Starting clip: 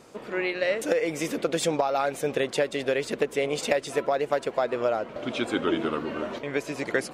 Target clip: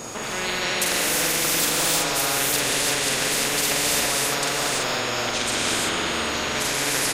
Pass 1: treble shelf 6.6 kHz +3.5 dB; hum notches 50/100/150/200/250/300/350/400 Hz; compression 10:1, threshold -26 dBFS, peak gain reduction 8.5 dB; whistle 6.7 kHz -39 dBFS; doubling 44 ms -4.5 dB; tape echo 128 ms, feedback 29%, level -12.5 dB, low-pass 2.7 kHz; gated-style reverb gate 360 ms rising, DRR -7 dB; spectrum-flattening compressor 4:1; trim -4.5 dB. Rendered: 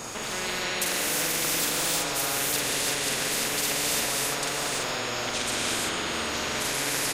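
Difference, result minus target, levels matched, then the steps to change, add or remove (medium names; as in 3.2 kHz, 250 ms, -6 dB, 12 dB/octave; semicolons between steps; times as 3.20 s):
compression: peak gain reduction +8.5 dB
remove: compression 10:1, threshold -26 dBFS, peak gain reduction 8.5 dB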